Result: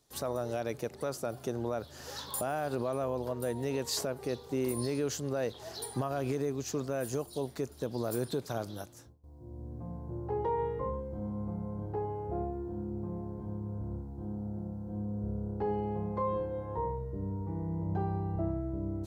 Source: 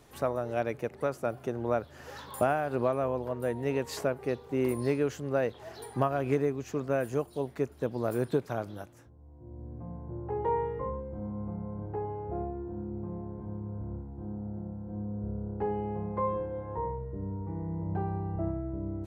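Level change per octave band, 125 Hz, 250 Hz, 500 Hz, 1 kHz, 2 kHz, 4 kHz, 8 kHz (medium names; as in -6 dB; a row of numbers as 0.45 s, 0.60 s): -1.0 dB, -1.5 dB, -3.5 dB, -3.5 dB, -5.5 dB, +6.5 dB, +8.5 dB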